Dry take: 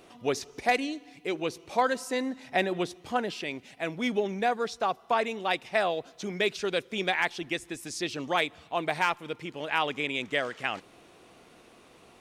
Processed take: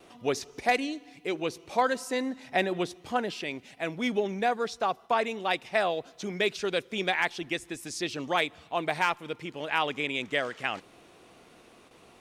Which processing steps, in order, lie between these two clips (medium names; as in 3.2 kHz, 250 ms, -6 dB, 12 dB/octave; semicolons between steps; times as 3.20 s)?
gate with hold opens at -46 dBFS